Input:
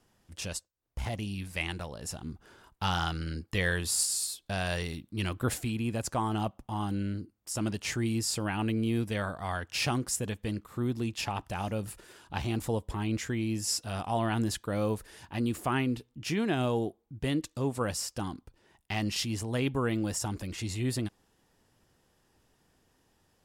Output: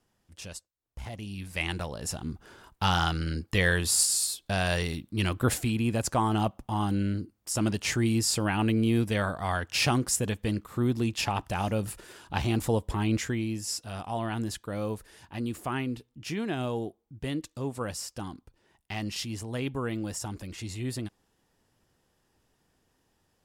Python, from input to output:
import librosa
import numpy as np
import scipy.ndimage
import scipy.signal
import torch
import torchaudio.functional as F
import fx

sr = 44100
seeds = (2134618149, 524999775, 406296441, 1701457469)

y = fx.gain(x, sr, db=fx.line((1.13, -5.0), (1.76, 4.5), (13.17, 4.5), (13.64, -2.5)))